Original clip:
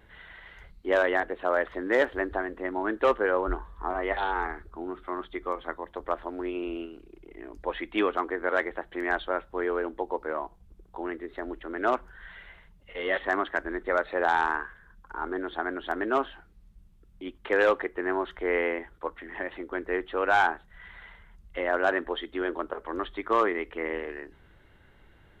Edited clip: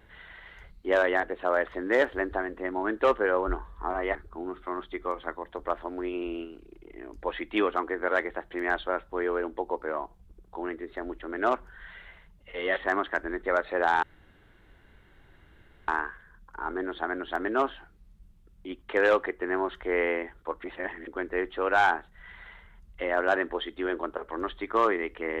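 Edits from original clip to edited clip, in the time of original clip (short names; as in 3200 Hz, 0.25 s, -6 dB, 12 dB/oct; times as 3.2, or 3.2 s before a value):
4.15–4.56 cut
14.44 insert room tone 1.85 s
19.2–19.63 reverse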